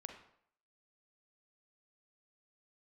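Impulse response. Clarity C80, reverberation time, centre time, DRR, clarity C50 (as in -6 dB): 9.5 dB, 0.65 s, 23 ms, 4.0 dB, 6.0 dB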